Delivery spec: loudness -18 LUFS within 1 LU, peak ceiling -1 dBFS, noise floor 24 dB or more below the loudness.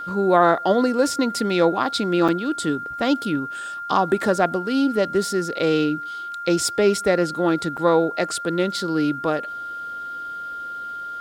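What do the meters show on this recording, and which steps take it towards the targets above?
dropouts 2; longest dropout 6.1 ms; steady tone 1400 Hz; tone level -29 dBFS; loudness -22.0 LUFS; peak -3.0 dBFS; loudness target -18.0 LUFS
-> interpolate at 2.28/7.77, 6.1 ms; notch 1400 Hz, Q 30; gain +4 dB; limiter -1 dBFS

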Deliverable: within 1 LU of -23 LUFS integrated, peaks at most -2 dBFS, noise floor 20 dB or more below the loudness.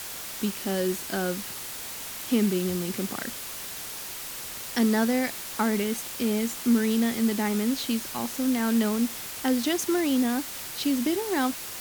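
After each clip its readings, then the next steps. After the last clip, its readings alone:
noise floor -37 dBFS; noise floor target -47 dBFS; loudness -27.0 LUFS; peak -12.0 dBFS; loudness target -23.0 LUFS
-> denoiser 10 dB, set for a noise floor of -37 dBFS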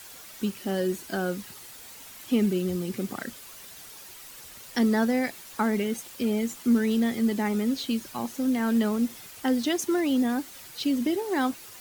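noise floor -46 dBFS; noise floor target -47 dBFS
-> denoiser 6 dB, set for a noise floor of -46 dBFS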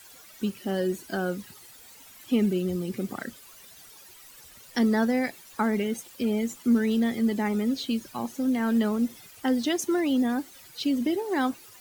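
noise floor -50 dBFS; loudness -27.5 LUFS; peak -12.5 dBFS; loudness target -23.0 LUFS
-> gain +4.5 dB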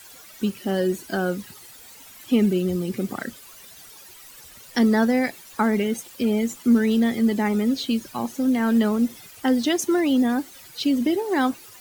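loudness -23.0 LUFS; peak -8.0 dBFS; noise floor -46 dBFS

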